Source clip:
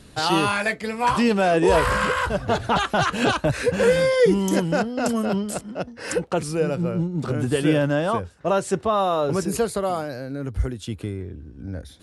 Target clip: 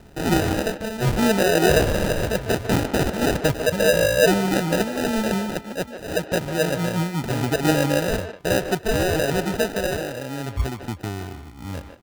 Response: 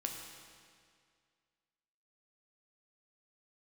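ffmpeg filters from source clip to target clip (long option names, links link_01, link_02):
-filter_complex "[0:a]acrusher=samples=40:mix=1:aa=0.000001,asplit=2[link_01][link_02];[link_02]adelay=150,highpass=300,lowpass=3400,asoftclip=type=hard:threshold=-16.5dB,volume=-8dB[link_03];[link_01][link_03]amix=inputs=2:normalize=0"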